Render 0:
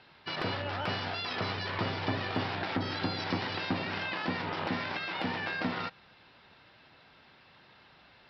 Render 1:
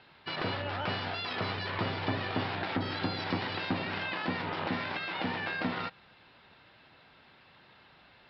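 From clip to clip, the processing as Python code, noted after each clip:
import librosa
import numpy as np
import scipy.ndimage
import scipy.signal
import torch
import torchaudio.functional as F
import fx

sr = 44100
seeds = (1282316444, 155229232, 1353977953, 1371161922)

y = scipy.signal.sosfilt(scipy.signal.butter(4, 4800.0, 'lowpass', fs=sr, output='sos'), x)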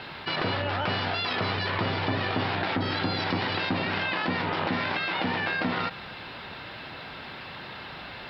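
y = fx.env_flatten(x, sr, amount_pct=50)
y = y * librosa.db_to_amplitude(2.5)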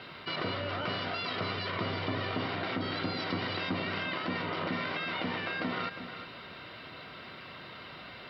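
y = fx.notch_comb(x, sr, f0_hz=840.0)
y = y + 10.0 ** (-11.0 / 20.0) * np.pad(y, (int(357 * sr / 1000.0), 0))[:len(y)]
y = y * librosa.db_to_amplitude(-5.0)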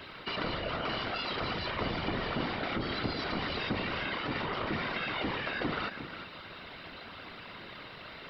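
y = fx.whisperise(x, sr, seeds[0])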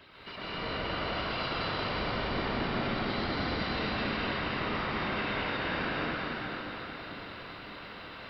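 y = x + 10.0 ** (-5.0 / 20.0) * np.pad(x, (int(223 * sr / 1000.0), 0))[:len(x)]
y = fx.rev_plate(y, sr, seeds[1], rt60_s=4.6, hf_ratio=0.75, predelay_ms=115, drr_db=-9.0)
y = y * librosa.db_to_amplitude(-9.0)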